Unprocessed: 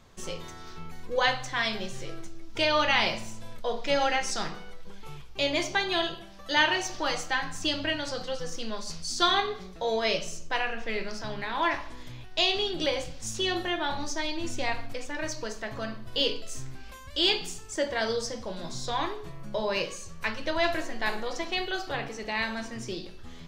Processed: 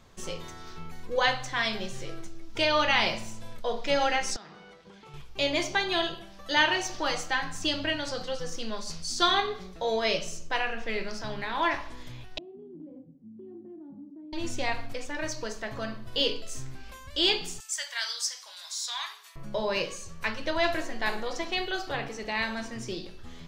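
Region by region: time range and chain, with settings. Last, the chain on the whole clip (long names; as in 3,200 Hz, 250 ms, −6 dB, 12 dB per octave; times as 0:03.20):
0:04.36–0:05.14: high-pass filter 130 Hz + downward compressor 5 to 1, threshold −45 dBFS + high-frequency loss of the air 62 metres
0:12.38–0:14.33: flat-topped band-pass 230 Hz, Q 1.9 + downward compressor 3 to 1, threshold −42 dBFS
0:17.60–0:19.36: Bessel high-pass filter 1,600 Hz, order 4 + high-shelf EQ 5,200 Hz +11.5 dB
whole clip: no processing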